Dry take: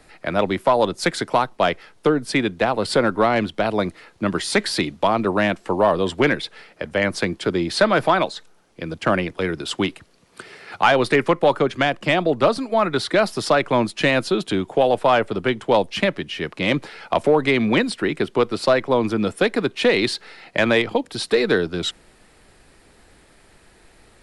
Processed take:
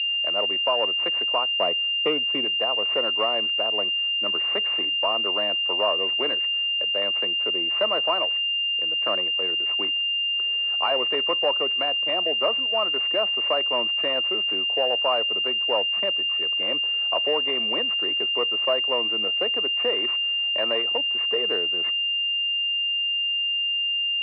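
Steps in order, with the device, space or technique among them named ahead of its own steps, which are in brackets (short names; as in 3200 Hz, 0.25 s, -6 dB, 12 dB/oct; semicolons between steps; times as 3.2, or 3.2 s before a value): 1.5–2.45 tilt -3 dB/oct; toy sound module (decimation joined by straight lines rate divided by 6×; pulse-width modulation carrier 2800 Hz; speaker cabinet 740–3900 Hz, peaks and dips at 830 Hz -9 dB, 1500 Hz -10 dB, 2500 Hz +4 dB)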